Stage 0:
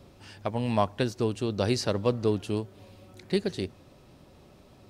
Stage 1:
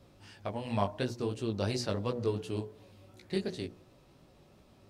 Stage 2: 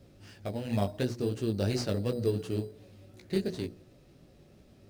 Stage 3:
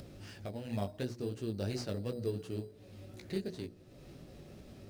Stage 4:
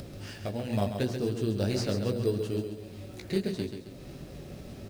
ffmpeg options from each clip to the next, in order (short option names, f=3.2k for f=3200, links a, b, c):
-af "bandreject=f=61.06:t=h:w=4,bandreject=f=122.12:t=h:w=4,bandreject=f=183.18:t=h:w=4,bandreject=f=244.24:t=h:w=4,bandreject=f=305.3:t=h:w=4,bandreject=f=366.36:t=h:w=4,bandreject=f=427.42:t=h:w=4,bandreject=f=488.48:t=h:w=4,bandreject=f=549.54:t=h:w=4,bandreject=f=610.6:t=h:w=4,bandreject=f=671.66:t=h:w=4,bandreject=f=732.72:t=h:w=4,bandreject=f=793.78:t=h:w=4,bandreject=f=854.84:t=h:w=4,bandreject=f=915.9:t=h:w=4,bandreject=f=976.96:t=h:w=4,bandreject=f=1.03802k:t=h:w=4,flanger=delay=16:depth=5:speed=2.8,volume=-2.5dB"
-filter_complex "[0:a]equalizer=f=1k:t=o:w=0.72:g=-14.5,asplit=2[a][b];[b]acrusher=samples=10:mix=1:aa=0.000001,volume=-5dB[c];[a][c]amix=inputs=2:normalize=0"
-af "acompressor=mode=upward:threshold=-32dB:ratio=2.5,volume=-7dB"
-filter_complex "[0:a]acrusher=bits=11:mix=0:aa=0.000001,asplit=2[a][b];[b]aecho=0:1:135|270|405|540|675:0.422|0.181|0.078|0.0335|0.0144[c];[a][c]amix=inputs=2:normalize=0,volume=7.5dB"